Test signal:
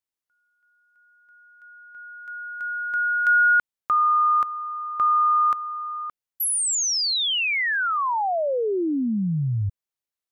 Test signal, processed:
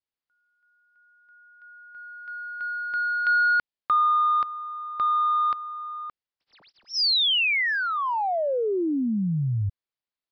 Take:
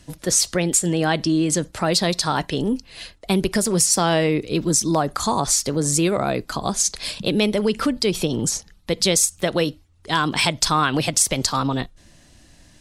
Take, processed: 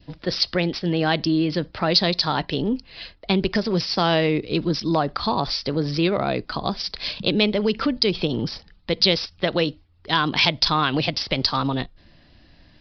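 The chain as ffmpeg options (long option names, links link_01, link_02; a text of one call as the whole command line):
ffmpeg -i in.wav -filter_complex "[0:a]asplit=2[link_01][link_02];[link_02]adynamicsmooth=sensitivity=1.5:basefreq=3300,volume=1.5dB[link_03];[link_01][link_03]amix=inputs=2:normalize=0,adynamicequalizer=threshold=0.0398:dfrequency=1400:dqfactor=1.5:tfrequency=1400:tqfactor=1.5:attack=5:release=100:ratio=0.375:range=2:mode=cutabove:tftype=bell,aresample=11025,aresample=44100,aemphasis=mode=production:type=75kf,volume=-8dB" out.wav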